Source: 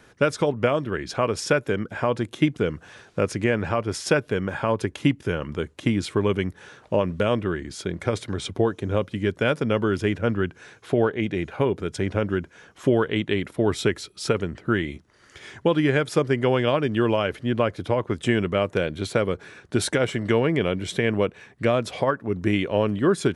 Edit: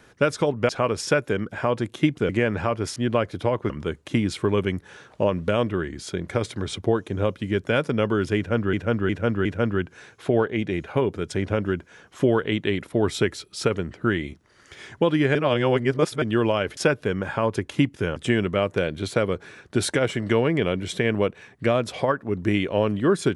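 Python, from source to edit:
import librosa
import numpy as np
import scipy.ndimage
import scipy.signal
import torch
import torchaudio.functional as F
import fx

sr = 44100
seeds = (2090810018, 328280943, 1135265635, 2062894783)

y = fx.edit(x, sr, fx.cut(start_s=0.69, length_s=0.39),
    fx.cut(start_s=2.68, length_s=0.68),
    fx.swap(start_s=4.03, length_s=1.39, other_s=17.41, other_length_s=0.74),
    fx.repeat(start_s=10.09, length_s=0.36, count=4),
    fx.reverse_span(start_s=15.99, length_s=0.87), tone=tone)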